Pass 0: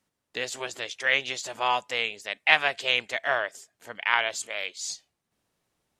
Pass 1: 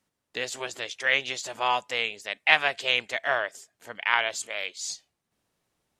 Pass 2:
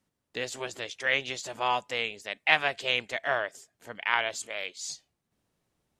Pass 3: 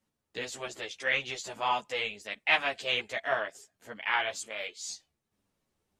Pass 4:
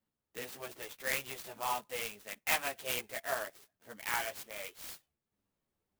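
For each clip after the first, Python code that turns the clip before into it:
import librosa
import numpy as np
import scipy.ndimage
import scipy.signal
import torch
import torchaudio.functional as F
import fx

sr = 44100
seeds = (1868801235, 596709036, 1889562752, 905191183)

y1 = x
y2 = fx.low_shelf(y1, sr, hz=420.0, db=7.0)
y2 = y2 * 10.0 ** (-3.5 / 20.0)
y3 = fx.ensemble(y2, sr)
y3 = y3 * 10.0 ** (1.0 / 20.0)
y4 = fx.clock_jitter(y3, sr, seeds[0], jitter_ms=0.053)
y4 = y4 * 10.0 ** (-6.0 / 20.0)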